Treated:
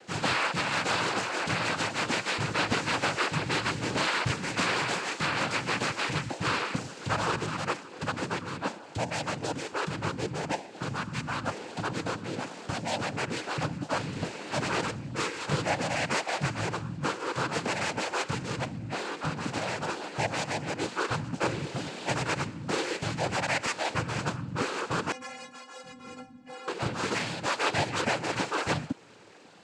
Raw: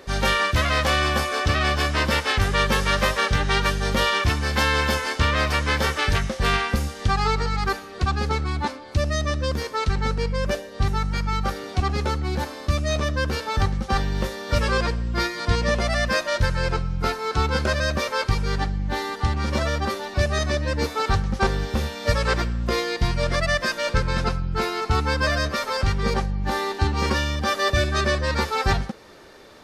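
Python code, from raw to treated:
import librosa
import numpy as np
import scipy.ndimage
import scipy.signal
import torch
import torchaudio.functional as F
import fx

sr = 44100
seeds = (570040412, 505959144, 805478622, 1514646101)

y = fx.noise_vocoder(x, sr, seeds[0], bands=8)
y = fx.stiff_resonator(y, sr, f0_hz=250.0, decay_s=0.23, stiffness=0.008, at=(25.12, 26.68))
y = y * 10.0 ** (-5.5 / 20.0)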